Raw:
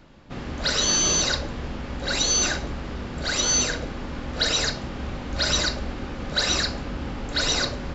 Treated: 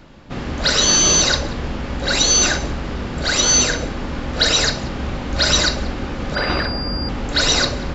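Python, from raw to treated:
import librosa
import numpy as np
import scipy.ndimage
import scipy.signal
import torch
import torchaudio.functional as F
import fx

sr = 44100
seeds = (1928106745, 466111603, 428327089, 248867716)

y = x + 10.0 ** (-21.5 / 20.0) * np.pad(x, (int(186 * sr / 1000.0), 0))[:len(x)]
y = fx.pwm(y, sr, carrier_hz=4800.0, at=(6.35, 7.09))
y = y * 10.0 ** (7.0 / 20.0)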